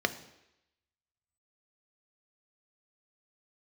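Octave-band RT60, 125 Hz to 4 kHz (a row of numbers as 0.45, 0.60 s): 0.70, 0.80, 0.85, 0.85, 0.95, 0.90 s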